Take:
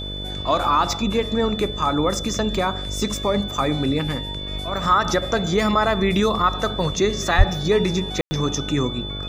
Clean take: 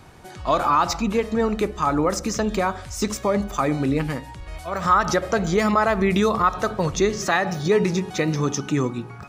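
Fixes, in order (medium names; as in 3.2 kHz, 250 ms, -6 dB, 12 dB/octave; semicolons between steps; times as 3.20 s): de-hum 49.4 Hz, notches 13; band-stop 3.5 kHz, Q 30; de-plosive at 7.37 s; room tone fill 8.21–8.31 s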